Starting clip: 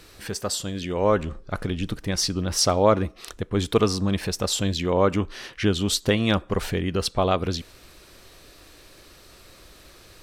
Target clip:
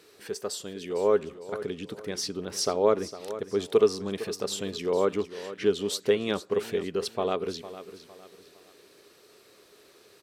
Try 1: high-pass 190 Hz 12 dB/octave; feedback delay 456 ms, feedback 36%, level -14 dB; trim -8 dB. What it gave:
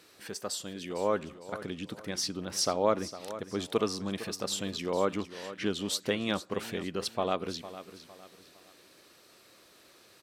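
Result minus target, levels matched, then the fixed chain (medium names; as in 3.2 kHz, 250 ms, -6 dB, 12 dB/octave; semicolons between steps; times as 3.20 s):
500 Hz band -2.5 dB
high-pass 190 Hz 12 dB/octave; peaking EQ 420 Hz +13.5 dB 0.26 oct; feedback delay 456 ms, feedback 36%, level -14 dB; trim -8 dB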